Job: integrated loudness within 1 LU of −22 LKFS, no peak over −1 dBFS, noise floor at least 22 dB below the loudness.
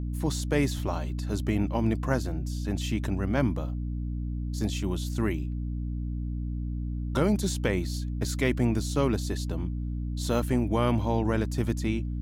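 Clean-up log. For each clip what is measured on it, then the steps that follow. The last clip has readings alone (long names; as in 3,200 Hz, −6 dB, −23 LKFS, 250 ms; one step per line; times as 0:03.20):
mains hum 60 Hz; hum harmonics up to 300 Hz; level of the hum −29 dBFS; integrated loudness −29.0 LKFS; sample peak −12.5 dBFS; target loudness −22.0 LKFS
→ mains-hum notches 60/120/180/240/300 Hz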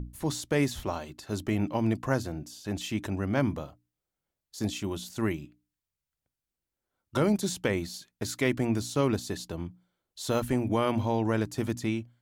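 mains hum none found; integrated loudness −30.5 LKFS; sample peak −14.0 dBFS; target loudness −22.0 LKFS
→ level +8.5 dB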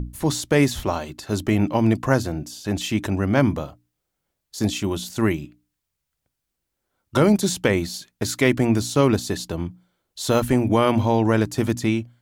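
integrated loudness −22.0 LKFS; sample peak −5.5 dBFS; background noise floor −80 dBFS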